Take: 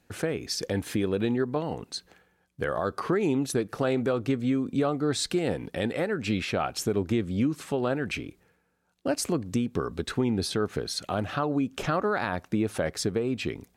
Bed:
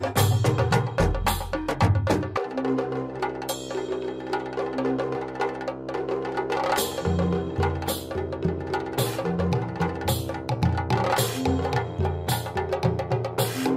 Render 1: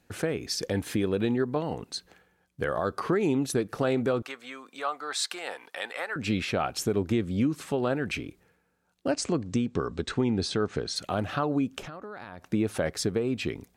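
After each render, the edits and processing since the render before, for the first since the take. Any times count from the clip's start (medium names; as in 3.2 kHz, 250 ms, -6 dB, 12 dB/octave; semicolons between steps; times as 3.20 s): 4.22–6.16 s: resonant high-pass 1 kHz, resonance Q 1.5; 9.11–10.96 s: steep low-pass 8.4 kHz; 11.78–12.53 s: compression 10:1, threshold -37 dBFS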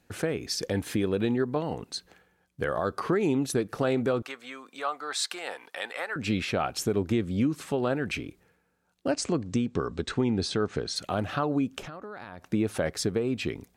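no audible change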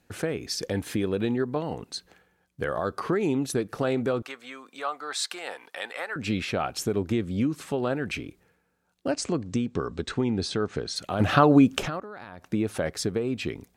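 11.20–12.00 s: gain +10 dB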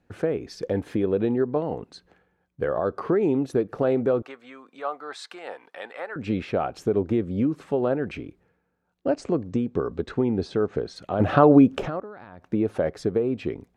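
low-pass 1.3 kHz 6 dB/octave; dynamic bell 500 Hz, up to +6 dB, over -39 dBFS, Q 0.88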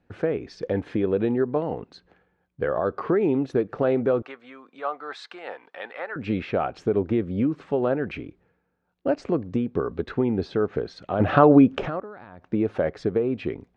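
low-pass 4.4 kHz 12 dB/octave; dynamic bell 2 kHz, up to +3 dB, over -43 dBFS, Q 0.81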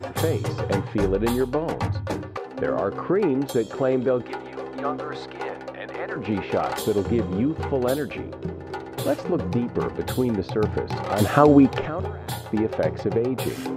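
add bed -5.5 dB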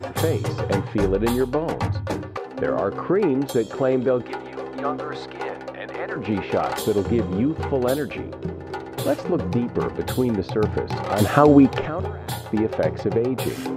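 trim +1.5 dB; peak limiter -2 dBFS, peak gain reduction 1.5 dB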